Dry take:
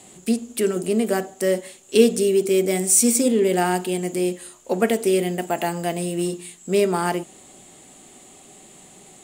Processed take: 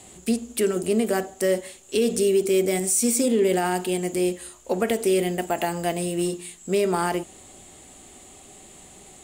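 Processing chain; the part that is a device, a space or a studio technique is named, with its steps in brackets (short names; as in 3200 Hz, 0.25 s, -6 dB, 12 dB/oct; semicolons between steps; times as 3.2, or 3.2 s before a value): car stereo with a boomy subwoofer (resonant low shelf 110 Hz +8 dB, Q 1.5; limiter -12.5 dBFS, peak gain reduction 9.5 dB)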